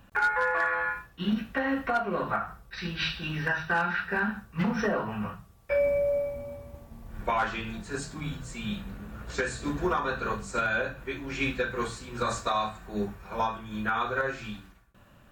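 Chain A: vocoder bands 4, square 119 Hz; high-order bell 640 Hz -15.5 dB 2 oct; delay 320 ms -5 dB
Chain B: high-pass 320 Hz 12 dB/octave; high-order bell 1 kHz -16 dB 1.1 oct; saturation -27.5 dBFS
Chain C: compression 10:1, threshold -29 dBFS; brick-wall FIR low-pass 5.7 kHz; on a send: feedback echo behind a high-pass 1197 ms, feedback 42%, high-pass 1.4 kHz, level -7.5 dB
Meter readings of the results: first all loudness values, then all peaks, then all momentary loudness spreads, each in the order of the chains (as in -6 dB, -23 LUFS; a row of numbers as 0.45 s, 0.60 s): -31.5 LUFS, -36.5 LUFS, -34.5 LUFS; -13.0 dBFS, -27.5 dBFS, -20.0 dBFS; 13 LU, 11 LU, 8 LU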